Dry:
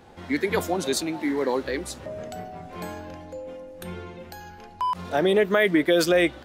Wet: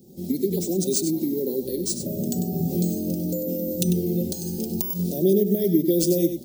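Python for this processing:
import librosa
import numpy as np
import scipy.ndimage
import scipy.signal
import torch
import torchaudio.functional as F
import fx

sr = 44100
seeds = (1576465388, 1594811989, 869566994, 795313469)

p1 = fx.recorder_agc(x, sr, target_db=-15.5, rise_db_per_s=31.0, max_gain_db=30)
p2 = scipy.signal.sosfilt(scipy.signal.butter(2, 120.0, 'highpass', fs=sr, output='sos'), p1)
p3 = fx.peak_eq(p2, sr, hz=2400.0, db=-14.0, octaves=1.9)
p4 = p3 + fx.echo_single(p3, sr, ms=97, db=-9.0, dry=0)
p5 = np.repeat(p4[::3], 3)[:len(p4)]
p6 = scipy.signal.sosfilt(scipy.signal.cheby1(2, 1.0, [300.0, 5200.0], 'bandstop', fs=sr, output='sos'), p5)
p7 = fx.high_shelf(p6, sr, hz=9600.0, db=8.5)
p8 = p7 + 0.49 * np.pad(p7, (int(5.3 * sr / 1000.0), 0))[:len(p7)]
y = F.gain(torch.from_numpy(p8), 4.0).numpy()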